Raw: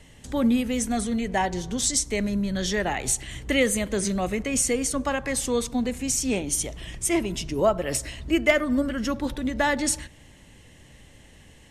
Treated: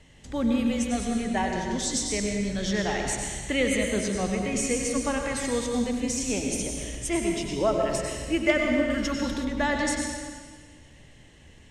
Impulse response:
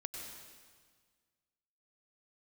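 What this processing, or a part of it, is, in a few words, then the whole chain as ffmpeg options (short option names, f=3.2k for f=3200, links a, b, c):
stairwell: -filter_complex "[1:a]atrim=start_sample=2205[a];[0:a][a]afir=irnorm=-1:irlink=0,lowpass=7.7k,asettb=1/sr,asplit=3[b][c][d];[b]atrim=end=8.904[e];[c]atrim=start=8.9:end=9.45,asetpts=PTS-STARTPTS,afade=t=in:d=0.004:c=qsin,afade=t=out:st=0.546:d=0.004:c=qsin,highshelf=f=3.5k:g=8[f];[d]atrim=start=9.446[g];[e][f]acrossfade=d=0.004:c1=hsin:c2=qsin[h];[h][g]acrossfade=d=0.004:c1=qsin:c2=hsin"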